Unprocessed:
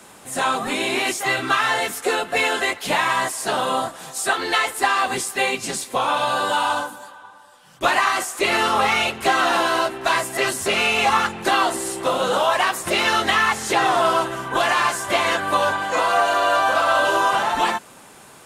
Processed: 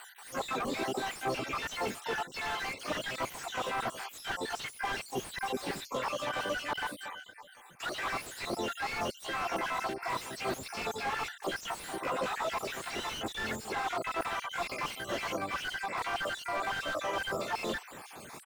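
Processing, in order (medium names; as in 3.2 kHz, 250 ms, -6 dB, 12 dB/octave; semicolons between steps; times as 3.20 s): random holes in the spectrogram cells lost 70%; reverse; compression 20:1, threshold -30 dBFS, peak gain reduction 16.5 dB; reverse; harmony voices -12 st -17 dB, +5 st -17 dB, +12 st -4 dB; slew-rate limiter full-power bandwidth 39 Hz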